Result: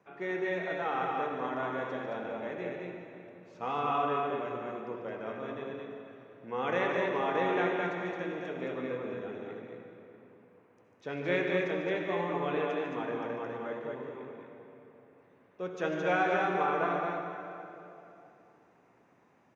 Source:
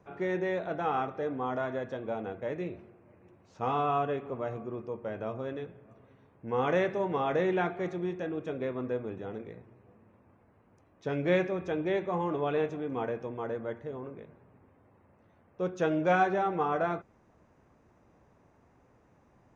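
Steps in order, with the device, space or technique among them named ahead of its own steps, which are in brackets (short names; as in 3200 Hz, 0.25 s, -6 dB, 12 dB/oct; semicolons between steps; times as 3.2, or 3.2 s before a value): stadium PA (HPF 170 Hz 12 dB/oct; bell 2300 Hz +6.5 dB 1.9 oct; loudspeakers at several distances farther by 50 m -9 dB, 75 m -3 dB; reverb RT60 3.1 s, pre-delay 59 ms, DRR 4 dB); gain -6 dB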